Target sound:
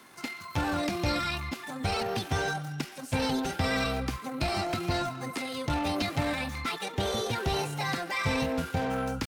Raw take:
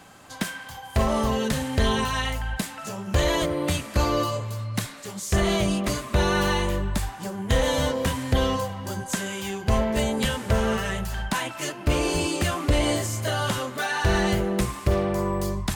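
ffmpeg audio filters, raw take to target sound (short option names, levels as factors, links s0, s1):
-filter_complex "[0:a]lowshelf=f=99:g=-8,asetrate=58866,aresample=44100,atempo=0.749154,acrossover=split=6800[s0][s1];[s1]acompressor=threshold=0.00398:ratio=4:attack=1:release=60[s2];[s0][s2]amix=inputs=2:normalize=0,acrossover=split=370|1800[s3][s4][s5];[s4]asoftclip=type=hard:threshold=0.0355[s6];[s3][s6][s5]amix=inputs=3:normalize=0,atempo=1.7,volume=0.75"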